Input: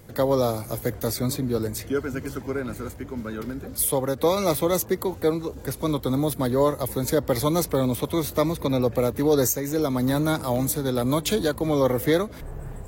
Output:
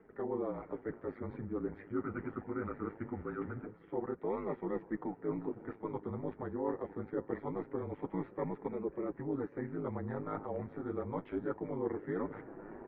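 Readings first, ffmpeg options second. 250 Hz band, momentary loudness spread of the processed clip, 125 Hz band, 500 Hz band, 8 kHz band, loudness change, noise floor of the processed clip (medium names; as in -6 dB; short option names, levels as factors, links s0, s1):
-13.5 dB, 5 LU, -17.0 dB, -15.0 dB, under -40 dB, -15.5 dB, -58 dBFS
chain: -filter_complex "[0:a]aecho=1:1:2.1:0.3,areverse,acompressor=threshold=0.0251:ratio=6,areverse,highpass=f=240:t=q:w=0.5412,highpass=f=240:t=q:w=1.307,lowpass=f=2100:t=q:w=0.5176,lowpass=f=2100:t=q:w=0.7071,lowpass=f=2100:t=q:w=1.932,afreqshift=-100,aeval=exprs='val(0)*sin(2*PI*52*n/s)':c=same,asplit=2[s0][s1];[s1]adelay=549,lowpass=f=1100:p=1,volume=0.0794,asplit=2[s2][s3];[s3]adelay=549,lowpass=f=1100:p=1,volume=0.48,asplit=2[s4][s5];[s5]adelay=549,lowpass=f=1100:p=1,volume=0.48[s6];[s0][s2][s4][s6]amix=inputs=4:normalize=0,flanger=delay=4.4:depth=7.1:regen=-37:speed=0.23:shape=triangular,volume=1.68"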